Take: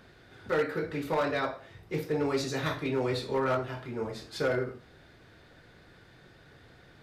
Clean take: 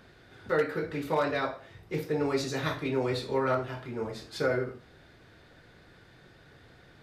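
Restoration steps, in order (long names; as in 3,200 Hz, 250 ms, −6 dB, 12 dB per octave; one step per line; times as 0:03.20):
clipped peaks rebuilt −22 dBFS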